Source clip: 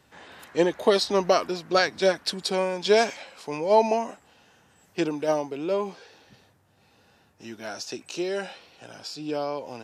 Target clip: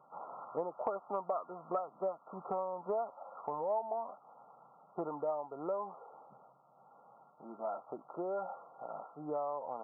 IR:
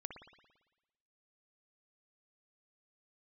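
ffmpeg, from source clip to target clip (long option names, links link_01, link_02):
-af "lowshelf=frequency=490:width_type=q:width=1.5:gain=-11,afftfilt=real='re*between(b*sr/4096,120,1400)':imag='im*between(b*sr/4096,120,1400)':win_size=4096:overlap=0.75,acompressor=threshold=-38dB:ratio=5,volume=3dB"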